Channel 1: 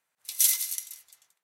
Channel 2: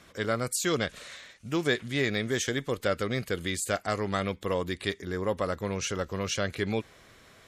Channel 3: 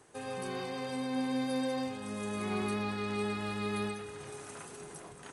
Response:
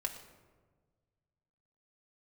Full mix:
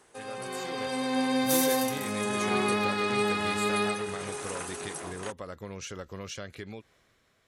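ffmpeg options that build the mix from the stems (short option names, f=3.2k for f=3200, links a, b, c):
-filter_complex "[0:a]asoftclip=type=tanh:threshold=-23.5dB,adelay=1100,volume=-10dB[a];[1:a]acompressor=threshold=-30dB:ratio=6,volume=-14dB,asplit=2[b][c];[2:a]highpass=f=380:p=1,volume=1.5dB[d];[c]apad=whole_len=111980[e];[a][e]sidechaingate=range=-33dB:threshold=-56dB:ratio=16:detection=peak[f];[f][b][d]amix=inputs=3:normalize=0,dynaudnorm=f=150:g=11:m=8.5dB"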